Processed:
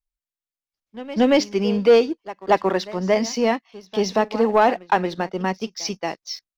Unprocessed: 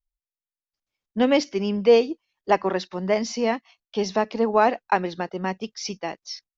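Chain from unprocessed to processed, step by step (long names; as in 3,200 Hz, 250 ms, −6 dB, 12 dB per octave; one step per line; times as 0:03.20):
echo ahead of the sound 229 ms −18 dB
leveller curve on the samples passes 1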